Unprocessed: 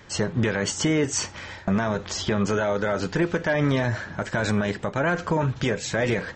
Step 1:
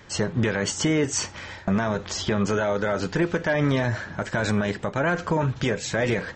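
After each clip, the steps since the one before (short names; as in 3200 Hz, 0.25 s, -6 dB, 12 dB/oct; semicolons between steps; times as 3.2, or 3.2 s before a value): nothing audible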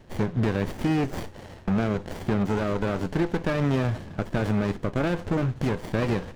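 running maximum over 33 samples; gain -1.5 dB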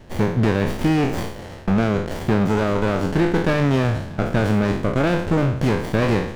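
spectral trails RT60 0.63 s; gain +5 dB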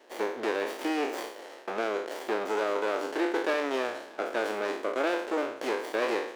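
inverse Chebyshev high-pass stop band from 170 Hz, stop band 40 dB; gain -6 dB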